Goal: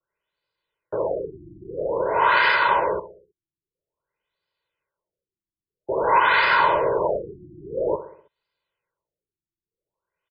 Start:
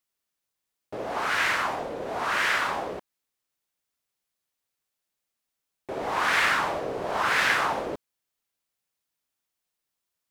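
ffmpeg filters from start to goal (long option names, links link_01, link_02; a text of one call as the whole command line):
ffmpeg -i in.wav -filter_complex "[0:a]highshelf=frequency=5000:gain=-5,acrossover=split=140[link_01][link_02];[link_02]acontrast=57[link_03];[link_01][link_03]amix=inputs=2:normalize=0,aecho=1:1:2:0.87,alimiter=limit=-9.5dB:level=0:latency=1:release=246,adynamicequalizer=threshold=0.0178:dfrequency=950:dqfactor=6:tfrequency=950:tqfactor=6:attack=5:release=100:ratio=0.375:range=3:mode=boostabove:tftype=bell,asplit=2[link_04][link_05];[link_05]aecho=0:1:64|128|192|256|320:0.211|0.11|0.0571|0.0297|0.0155[link_06];[link_04][link_06]amix=inputs=2:normalize=0,afftfilt=real='re*lt(b*sr/1024,350*pow(5100/350,0.5+0.5*sin(2*PI*0.5*pts/sr)))':imag='im*lt(b*sr/1024,350*pow(5100/350,0.5+0.5*sin(2*PI*0.5*pts/sr)))':win_size=1024:overlap=0.75" out.wav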